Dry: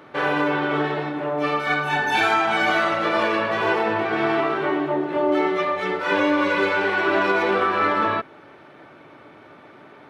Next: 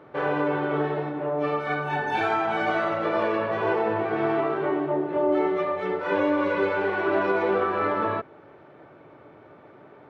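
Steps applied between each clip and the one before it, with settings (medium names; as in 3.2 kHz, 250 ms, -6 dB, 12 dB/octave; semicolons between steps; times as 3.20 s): FFT filter 130 Hz 0 dB, 250 Hz -5 dB, 450 Hz 0 dB, 9.4 kHz -18 dB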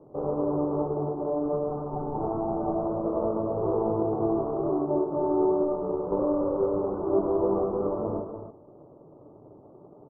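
median filter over 41 samples; steep low-pass 1.2 kHz 72 dB/octave; loudspeakers at several distances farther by 34 m -6 dB, 100 m -8 dB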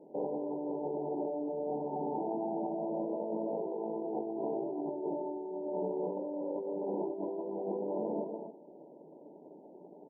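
rattle on loud lows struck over -42 dBFS, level -22 dBFS; compressor with a negative ratio -30 dBFS, ratio -1; brick-wall FIR band-pass 160–1000 Hz; trim -5 dB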